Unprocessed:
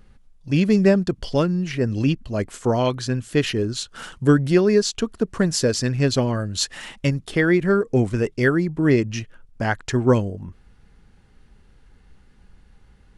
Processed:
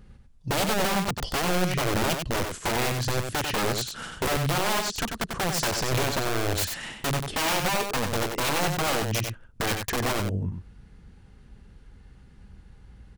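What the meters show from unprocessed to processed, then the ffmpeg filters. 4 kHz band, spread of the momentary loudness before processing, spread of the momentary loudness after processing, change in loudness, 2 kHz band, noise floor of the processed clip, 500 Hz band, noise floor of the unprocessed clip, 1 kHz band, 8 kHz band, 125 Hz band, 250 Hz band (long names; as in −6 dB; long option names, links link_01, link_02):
+1.0 dB, 10 LU, 6 LU, −5.5 dB, −1.5 dB, −52 dBFS, −8.5 dB, −54 dBFS, +3.5 dB, +1.0 dB, −7.5 dB, −11.5 dB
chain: -filter_complex "[0:a]highpass=frequency=80:poles=1,lowshelf=frequency=180:gain=11.5,acompressor=threshold=-19dB:ratio=8,aeval=exprs='(mod(9.44*val(0)+1,2)-1)/9.44':channel_layout=same,asplit=2[link_01][link_02];[link_02]aecho=0:1:94:0.531[link_03];[link_01][link_03]amix=inputs=2:normalize=0,volume=-1.5dB"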